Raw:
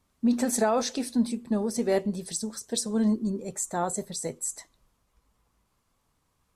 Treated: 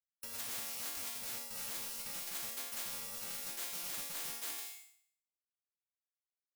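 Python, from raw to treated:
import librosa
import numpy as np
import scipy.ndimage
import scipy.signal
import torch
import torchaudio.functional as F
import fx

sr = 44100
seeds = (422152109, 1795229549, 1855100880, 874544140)

y = fx.bit_reversed(x, sr, seeds[0], block=128)
y = fx.quant_dither(y, sr, seeds[1], bits=6, dither='none')
y = fx.over_compress(y, sr, threshold_db=-28.0, ratio=-1.0)
y = fx.bass_treble(y, sr, bass_db=-7, treble_db=6)
y = fx.resonator_bank(y, sr, root=58, chord='minor', decay_s=0.6)
y = fx.noise_reduce_blind(y, sr, reduce_db=6)
y = fx.low_shelf(y, sr, hz=140.0, db=-8.0)
y = fx.spectral_comp(y, sr, ratio=10.0)
y = y * 10.0 ** (4.5 / 20.0)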